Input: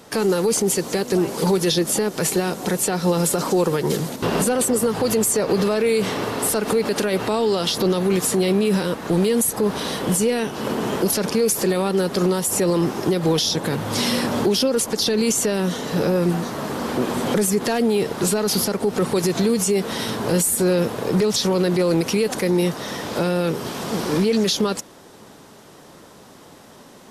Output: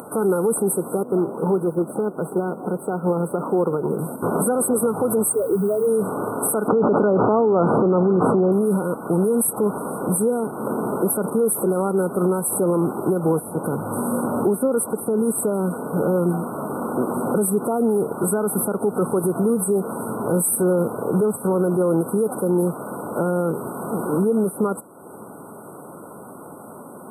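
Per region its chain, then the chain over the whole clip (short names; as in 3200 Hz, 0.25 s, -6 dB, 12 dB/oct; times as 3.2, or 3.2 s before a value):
1.03–3.99 low shelf 100 Hz -7 dB + companded quantiser 4-bit + LPF 1000 Hz 6 dB/oct
5.28–5.86 spectral contrast raised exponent 3.4 + added noise pink -35 dBFS
6.68–8.52 LPF 1400 Hz + fast leveller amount 100%
whole clip: FFT band-reject 1500–8000 Hz; HPF 130 Hz 12 dB/oct; upward compressor, threshold -30 dBFS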